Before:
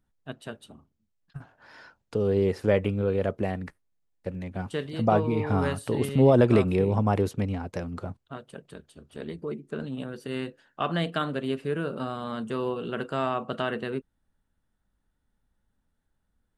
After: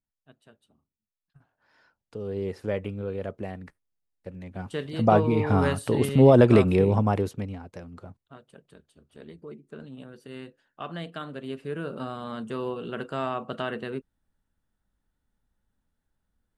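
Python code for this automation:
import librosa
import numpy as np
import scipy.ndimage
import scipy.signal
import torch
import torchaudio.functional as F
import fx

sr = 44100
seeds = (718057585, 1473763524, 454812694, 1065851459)

y = fx.gain(x, sr, db=fx.line((1.37, -17.5), (2.49, -6.5), (4.3, -6.5), (5.1, 3.0), (6.9, 3.0), (7.69, -8.5), (11.22, -8.5), (11.95, -2.0)))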